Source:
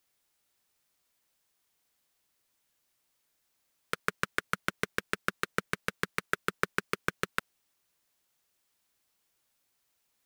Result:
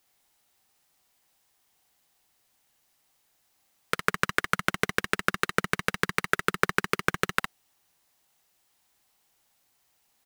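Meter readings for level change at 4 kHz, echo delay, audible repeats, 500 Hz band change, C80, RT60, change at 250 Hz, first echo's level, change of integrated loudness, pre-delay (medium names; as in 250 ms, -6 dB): +6.5 dB, 60 ms, 1, +6.0 dB, no reverb, no reverb, +6.5 dB, -6.5 dB, +6.0 dB, no reverb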